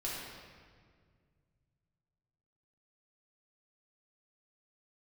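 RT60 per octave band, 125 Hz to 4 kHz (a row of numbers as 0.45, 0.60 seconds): 3.5, 2.5, 2.1, 1.7, 1.6, 1.3 seconds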